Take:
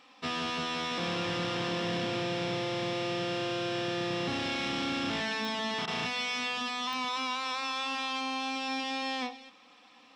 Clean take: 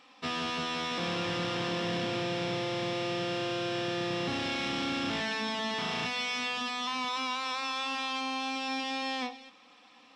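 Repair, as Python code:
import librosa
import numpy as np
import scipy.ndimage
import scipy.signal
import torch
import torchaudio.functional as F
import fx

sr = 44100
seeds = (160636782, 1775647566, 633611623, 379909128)

y = fx.fix_declick_ar(x, sr, threshold=10.0)
y = fx.fix_interpolate(y, sr, at_s=(5.86,), length_ms=14.0)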